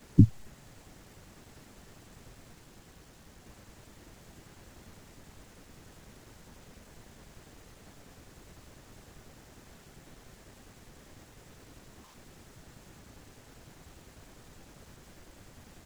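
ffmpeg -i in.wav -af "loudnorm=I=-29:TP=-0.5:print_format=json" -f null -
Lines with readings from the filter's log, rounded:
"input_i" : "-24.4",
"input_tp" : "-4.6",
"input_lra" : "0.2",
"input_thresh" : "-52.0",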